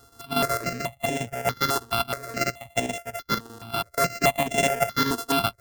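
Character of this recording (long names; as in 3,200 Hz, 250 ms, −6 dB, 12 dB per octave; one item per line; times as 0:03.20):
a buzz of ramps at a fixed pitch in blocks of 64 samples
chopped level 8.3 Hz, depth 60%, duty 75%
notches that jump at a steady rate 4.7 Hz 620–4,500 Hz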